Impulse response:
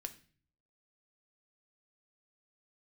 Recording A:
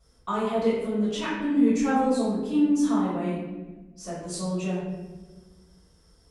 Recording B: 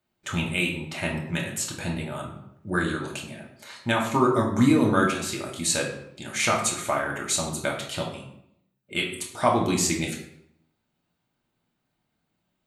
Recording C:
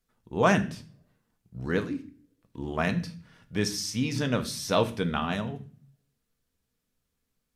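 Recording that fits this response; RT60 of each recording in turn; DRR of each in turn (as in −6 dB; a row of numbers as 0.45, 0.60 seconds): C; 1.3, 0.75, 0.45 seconds; −14.5, −1.5, 7.0 decibels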